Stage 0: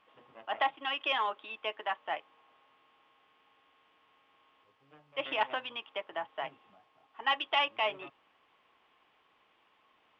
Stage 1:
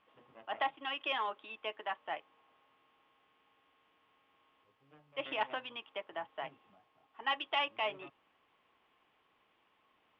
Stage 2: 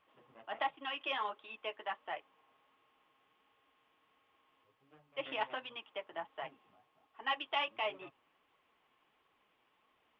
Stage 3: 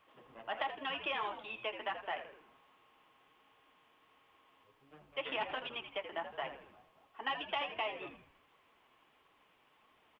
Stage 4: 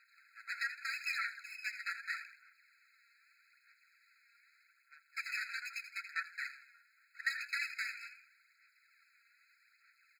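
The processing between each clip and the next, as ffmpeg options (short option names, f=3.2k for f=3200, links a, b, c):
-af "lowpass=f=2.8k:p=1,equalizer=f=920:t=o:w=2.8:g=-4"
-af "flanger=delay=1.4:depth=7.2:regen=-32:speed=1.4:shape=triangular,volume=2dB"
-filter_complex "[0:a]acrossover=split=630|2500[a][b][c];[a]acompressor=threshold=-50dB:ratio=4[d];[b]acompressor=threshold=-43dB:ratio=4[e];[c]acompressor=threshold=-50dB:ratio=4[f];[d][e][f]amix=inputs=3:normalize=0,asplit=2[g][h];[h]asplit=5[i][j][k][l][m];[i]adelay=81,afreqshift=-97,volume=-10dB[n];[j]adelay=162,afreqshift=-194,volume=-17.3dB[o];[k]adelay=243,afreqshift=-291,volume=-24.7dB[p];[l]adelay=324,afreqshift=-388,volume=-32dB[q];[m]adelay=405,afreqshift=-485,volume=-39.3dB[r];[n][o][p][q][r]amix=inputs=5:normalize=0[s];[g][s]amix=inputs=2:normalize=0,volume=5dB"
-af "aeval=exprs='max(val(0),0)':c=same,aphaser=in_gain=1:out_gain=1:delay=4.3:decay=0.49:speed=0.81:type=sinusoidal,afftfilt=real='re*eq(mod(floor(b*sr/1024/1300),2),1)':imag='im*eq(mod(floor(b*sr/1024/1300),2),1)':win_size=1024:overlap=0.75,volume=8dB"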